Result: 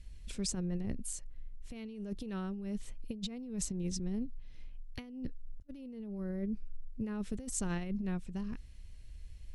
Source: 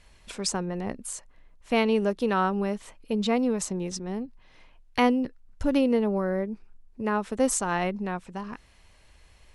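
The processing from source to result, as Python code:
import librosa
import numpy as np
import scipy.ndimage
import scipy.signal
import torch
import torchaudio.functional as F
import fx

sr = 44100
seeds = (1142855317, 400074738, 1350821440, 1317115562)

y = fx.tone_stack(x, sr, knobs='10-0-1')
y = fx.over_compress(y, sr, threshold_db=-48.0, ratio=-0.5)
y = F.gain(torch.from_numpy(y), 11.5).numpy()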